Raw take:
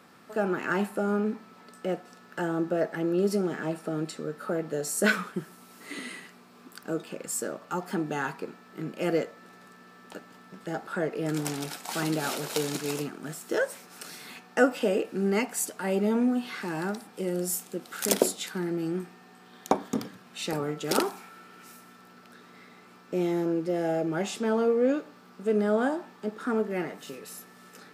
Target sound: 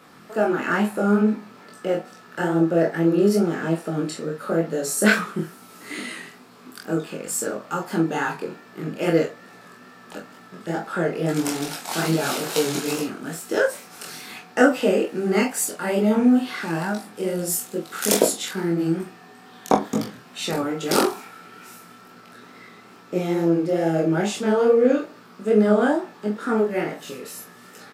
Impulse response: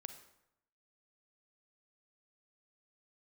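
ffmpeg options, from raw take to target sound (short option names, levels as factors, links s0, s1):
-af "flanger=delay=17.5:depth=7.2:speed=2.3,aecho=1:1:24|43:0.531|0.316,volume=2.51"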